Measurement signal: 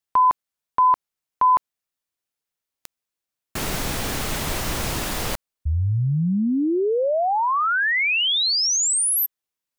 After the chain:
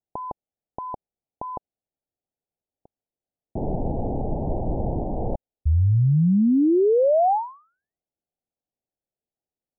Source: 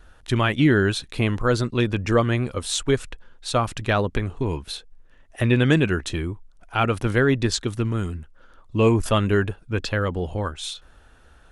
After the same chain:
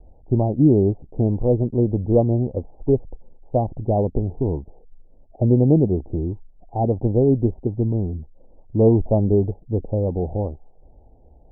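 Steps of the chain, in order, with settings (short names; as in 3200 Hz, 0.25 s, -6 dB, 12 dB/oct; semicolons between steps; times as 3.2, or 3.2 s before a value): steep low-pass 830 Hz 72 dB/oct; gain +3 dB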